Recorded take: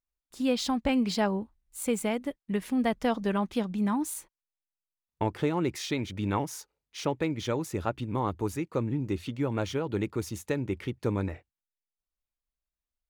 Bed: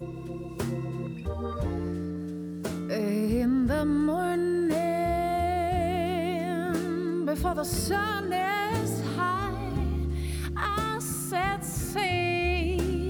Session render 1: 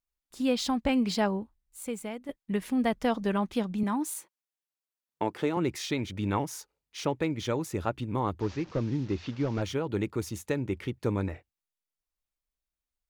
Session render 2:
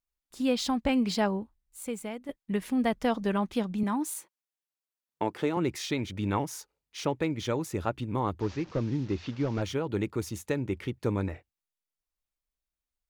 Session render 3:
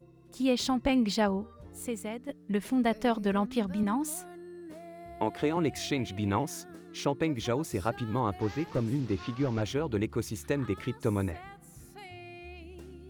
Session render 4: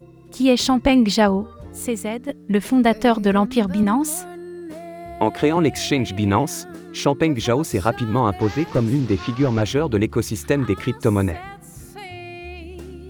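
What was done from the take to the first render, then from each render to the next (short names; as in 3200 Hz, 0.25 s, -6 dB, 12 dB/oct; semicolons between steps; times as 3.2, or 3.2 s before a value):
1.26–2.29 fade out quadratic, to -8.5 dB; 3.83–5.57 HPF 200 Hz; 8.4–9.62 delta modulation 32 kbps, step -45 dBFS
nothing audible
add bed -19.5 dB
gain +11 dB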